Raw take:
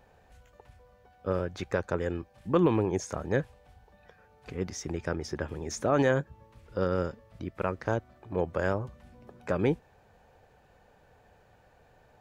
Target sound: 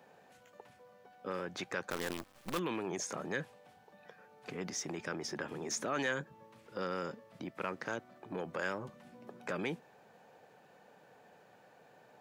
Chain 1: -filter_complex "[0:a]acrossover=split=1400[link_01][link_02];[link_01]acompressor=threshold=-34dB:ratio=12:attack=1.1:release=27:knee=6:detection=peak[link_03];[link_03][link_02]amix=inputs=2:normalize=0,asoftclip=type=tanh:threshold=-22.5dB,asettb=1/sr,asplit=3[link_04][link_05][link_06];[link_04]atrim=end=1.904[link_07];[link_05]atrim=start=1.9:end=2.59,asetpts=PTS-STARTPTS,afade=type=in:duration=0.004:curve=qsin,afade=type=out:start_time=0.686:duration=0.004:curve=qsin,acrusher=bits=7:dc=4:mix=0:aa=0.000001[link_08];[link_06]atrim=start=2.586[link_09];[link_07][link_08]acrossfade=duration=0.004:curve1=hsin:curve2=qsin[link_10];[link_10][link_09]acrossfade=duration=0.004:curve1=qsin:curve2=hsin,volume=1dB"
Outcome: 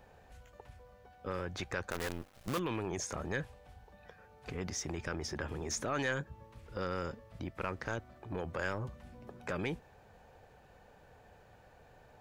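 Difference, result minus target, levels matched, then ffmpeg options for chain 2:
125 Hz band +6.0 dB
-filter_complex "[0:a]acrossover=split=1400[link_01][link_02];[link_01]acompressor=threshold=-34dB:ratio=12:attack=1.1:release=27:knee=6:detection=peak,highpass=frequency=160:width=0.5412,highpass=frequency=160:width=1.3066[link_03];[link_03][link_02]amix=inputs=2:normalize=0,asoftclip=type=tanh:threshold=-22.5dB,asettb=1/sr,asplit=3[link_04][link_05][link_06];[link_04]atrim=end=1.904[link_07];[link_05]atrim=start=1.9:end=2.59,asetpts=PTS-STARTPTS,afade=type=in:duration=0.004:curve=qsin,afade=type=out:start_time=0.686:duration=0.004:curve=qsin,acrusher=bits=7:dc=4:mix=0:aa=0.000001[link_08];[link_06]atrim=start=2.586[link_09];[link_07][link_08]acrossfade=duration=0.004:curve1=hsin:curve2=qsin[link_10];[link_10][link_09]acrossfade=duration=0.004:curve1=qsin:curve2=hsin,volume=1dB"

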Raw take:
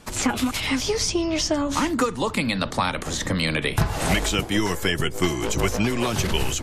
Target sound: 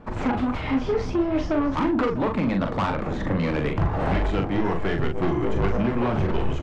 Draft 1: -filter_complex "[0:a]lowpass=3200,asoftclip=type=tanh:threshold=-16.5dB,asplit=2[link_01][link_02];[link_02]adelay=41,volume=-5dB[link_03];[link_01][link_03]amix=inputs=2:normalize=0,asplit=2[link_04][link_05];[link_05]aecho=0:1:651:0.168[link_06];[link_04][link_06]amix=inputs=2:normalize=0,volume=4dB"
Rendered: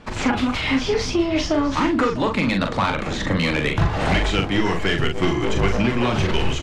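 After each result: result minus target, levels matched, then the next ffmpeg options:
4,000 Hz band +10.5 dB; soft clipping: distortion −6 dB
-filter_complex "[0:a]lowpass=1200,asoftclip=type=tanh:threshold=-16.5dB,asplit=2[link_01][link_02];[link_02]adelay=41,volume=-5dB[link_03];[link_01][link_03]amix=inputs=2:normalize=0,asplit=2[link_04][link_05];[link_05]aecho=0:1:651:0.168[link_06];[link_04][link_06]amix=inputs=2:normalize=0,volume=4dB"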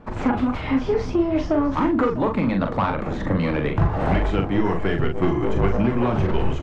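soft clipping: distortion −7 dB
-filter_complex "[0:a]lowpass=1200,asoftclip=type=tanh:threshold=-23dB,asplit=2[link_01][link_02];[link_02]adelay=41,volume=-5dB[link_03];[link_01][link_03]amix=inputs=2:normalize=0,asplit=2[link_04][link_05];[link_05]aecho=0:1:651:0.168[link_06];[link_04][link_06]amix=inputs=2:normalize=0,volume=4dB"

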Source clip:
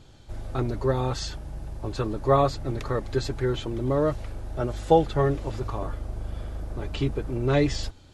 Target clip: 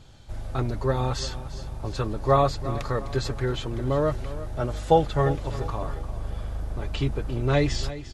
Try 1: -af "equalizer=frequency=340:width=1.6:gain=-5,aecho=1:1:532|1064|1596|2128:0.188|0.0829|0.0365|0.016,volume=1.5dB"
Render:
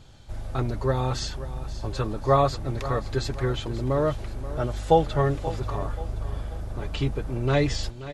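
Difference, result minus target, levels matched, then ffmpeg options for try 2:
echo 183 ms late
-af "equalizer=frequency=340:width=1.6:gain=-5,aecho=1:1:349|698|1047|1396:0.188|0.0829|0.0365|0.016,volume=1.5dB"

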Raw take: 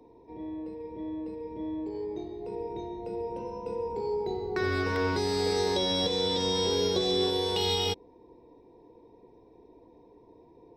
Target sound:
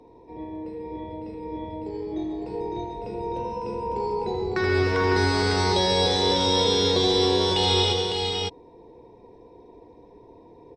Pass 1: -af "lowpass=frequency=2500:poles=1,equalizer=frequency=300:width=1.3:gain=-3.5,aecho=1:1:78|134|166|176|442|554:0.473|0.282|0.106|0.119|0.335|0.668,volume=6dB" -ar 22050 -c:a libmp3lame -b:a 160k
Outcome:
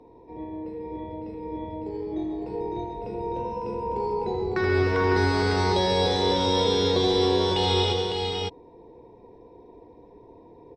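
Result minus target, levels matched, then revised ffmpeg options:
8,000 Hz band −4.5 dB
-af "lowpass=frequency=7800:poles=1,equalizer=frequency=300:width=1.3:gain=-3.5,aecho=1:1:78|134|166|176|442|554:0.473|0.282|0.106|0.119|0.335|0.668,volume=6dB" -ar 22050 -c:a libmp3lame -b:a 160k

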